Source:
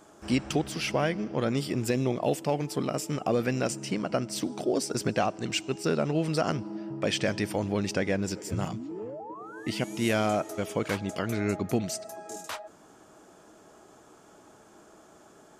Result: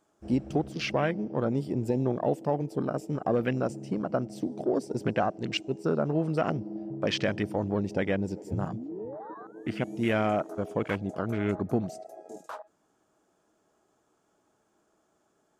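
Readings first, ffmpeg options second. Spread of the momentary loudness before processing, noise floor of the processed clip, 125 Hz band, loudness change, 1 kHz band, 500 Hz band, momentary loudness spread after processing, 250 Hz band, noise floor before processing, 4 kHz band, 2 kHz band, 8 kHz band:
10 LU, -72 dBFS, 0.0 dB, -0.5 dB, -0.5 dB, 0.0 dB, 11 LU, 0.0 dB, -55 dBFS, -4.0 dB, -2.0 dB, -13.5 dB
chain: -af "afwtdn=0.0178"

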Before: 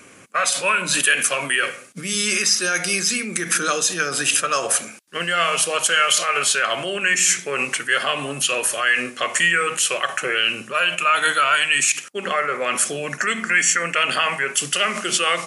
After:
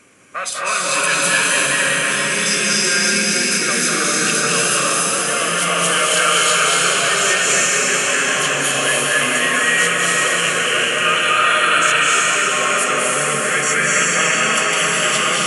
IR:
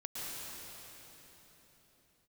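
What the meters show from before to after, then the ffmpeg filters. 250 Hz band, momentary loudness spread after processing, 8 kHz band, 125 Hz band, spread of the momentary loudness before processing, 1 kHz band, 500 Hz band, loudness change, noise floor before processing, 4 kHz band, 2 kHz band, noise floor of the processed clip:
+5.5 dB, 3 LU, +4.5 dB, +7.0 dB, 6 LU, +4.5 dB, +4.5 dB, +4.5 dB, -42 dBFS, +4.5 dB, +4.5 dB, -20 dBFS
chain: -filter_complex "[1:a]atrim=start_sample=2205,asetrate=24255,aresample=44100[a];[0:a][a]afir=irnorm=-1:irlink=0,volume=-2dB"

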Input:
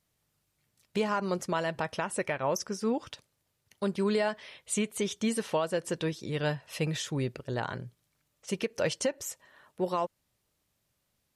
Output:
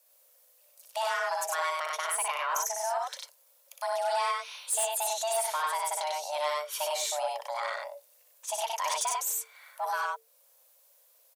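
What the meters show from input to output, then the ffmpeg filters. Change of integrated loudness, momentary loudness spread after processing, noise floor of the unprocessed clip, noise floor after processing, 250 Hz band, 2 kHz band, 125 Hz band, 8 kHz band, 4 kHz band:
+1.0 dB, 10 LU, -78 dBFS, -64 dBFS, under -40 dB, +2.5 dB, under -40 dB, +7.5 dB, +3.5 dB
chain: -filter_complex "[0:a]aemphasis=mode=production:type=50fm,asplit=2[a][b];[b]acompressor=threshold=-45dB:ratio=6,volume=0.5dB[c];[a][c]amix=inputs=2:normalize=0,aecho=1:1:61.22|96.21:0.631|0.794,aeval=exprs='(tanh(8.91*val(0)+0.1)-tanh(0.1))/8.91':c=same,afreqshift=450,volume=-3.5dB"

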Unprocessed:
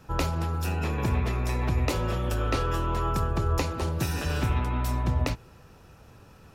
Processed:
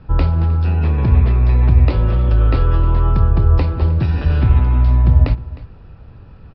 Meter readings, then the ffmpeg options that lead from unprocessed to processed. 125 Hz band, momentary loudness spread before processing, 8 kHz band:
+14.5 dB, 2 LU, under -25 dB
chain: -af "aresample=11025,aresample=44100,aemphasis=mode=reproduction:type=bsi,aecho=1:1:309:0.119,volume=3dB"

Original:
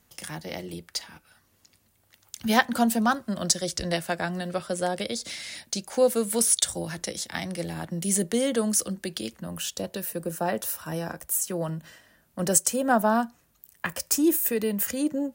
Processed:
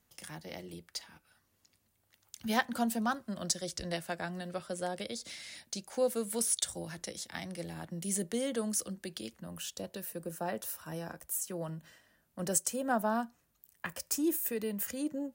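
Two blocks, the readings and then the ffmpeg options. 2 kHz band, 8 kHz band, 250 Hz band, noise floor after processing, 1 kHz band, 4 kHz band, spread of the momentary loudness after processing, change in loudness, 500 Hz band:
-9.0 dB, -9.0 dB, -9.0 dB, -75 dBFS, -9.0 dB, -9.0 dB, 13 LU, -9.0 dB, -9.0 dB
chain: -af "asoftclip=type=hard:threshold=-8dB,volume=-9dB"

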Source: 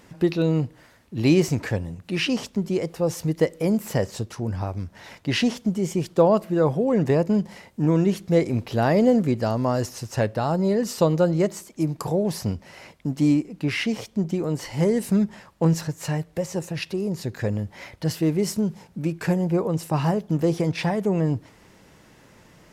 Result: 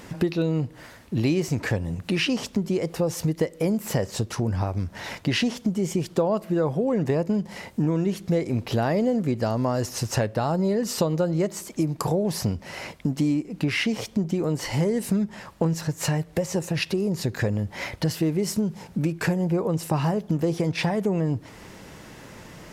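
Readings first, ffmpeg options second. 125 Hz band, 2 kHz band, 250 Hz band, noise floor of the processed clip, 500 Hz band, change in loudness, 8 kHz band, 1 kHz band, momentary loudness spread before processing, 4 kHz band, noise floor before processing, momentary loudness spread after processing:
-1.0 dB, +1.0 dB, -2.0 dB, -48 dBFS, -2.5 dB, -2.0 dB, +2.0 dB, -2.0 dB, 10 LU, +1.0 dB, -54 dBFS, 6 LU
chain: -af "acompressor=threshold=-31dB:ratio=4,volume=8.5dB"

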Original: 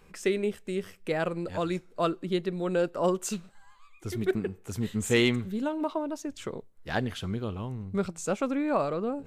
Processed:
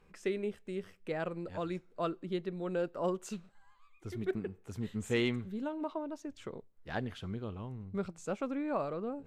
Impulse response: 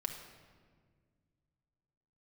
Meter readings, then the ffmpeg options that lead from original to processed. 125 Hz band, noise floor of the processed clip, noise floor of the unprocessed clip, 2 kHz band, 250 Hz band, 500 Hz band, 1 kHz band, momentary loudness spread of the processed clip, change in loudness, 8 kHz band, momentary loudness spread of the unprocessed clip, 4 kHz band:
-7.0 dB, -64 dBFS, -56 dBFS, -8.5 dB, -7.0 dB, -7.0 dB, -7.5 dB, 10 LU, -7.5 dB, -14.0 dB, 10 LU, -10.0 dB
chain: -af "aemphasis=mode=reproduction:type=cd,volume=-7.5dB"

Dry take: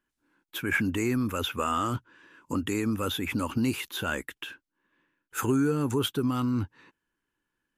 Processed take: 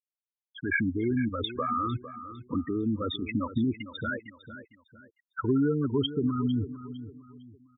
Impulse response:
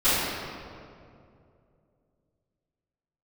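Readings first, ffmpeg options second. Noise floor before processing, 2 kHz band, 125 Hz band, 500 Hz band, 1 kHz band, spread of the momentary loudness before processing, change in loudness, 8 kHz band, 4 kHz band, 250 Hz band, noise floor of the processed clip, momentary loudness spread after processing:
-84 dBFS, -2.0 dB, -0.5 dB, -0.5 dB, -2.0 dB, 11 LU, -1.0 dB, under -40 dB, -3.0 dB, 0.0 dB, under -85 dBFS, 16 LU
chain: -filter_complex "[0:a]afftfilt=real='re*gte(hypot(re,im),0.112)':imag='im*gte(hypot(re,im),0.112)':win_size=1024:overlap=0.75,asplit=2[a][b];[b]adelay=454,lowpass=f=4.2k:p=1,volume=-13dB,asplit=2[c][d];[d]adelay=454,lowpass=f=4.2k:p=1,volume=0.35,asplit=2[e][f];[f]adelay=454,lowpass=f=4.2k:p=1,volume=0.35[g];[c][e][g]amix=inputs=3:normalize=0[h];[a][h]amix=inputs=2:normalize=0"

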